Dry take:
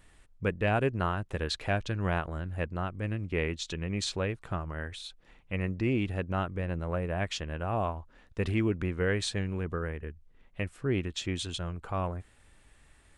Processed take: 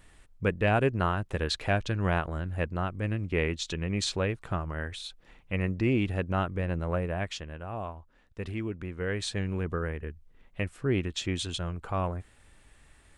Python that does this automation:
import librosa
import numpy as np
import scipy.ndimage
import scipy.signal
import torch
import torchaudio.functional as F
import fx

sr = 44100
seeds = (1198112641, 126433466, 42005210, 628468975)

y = fx.gain(x, sr, db=fx.line((6.96, 2.5), (7.62, -6.0), (8.86, -6.0), (9.51, 2.0)))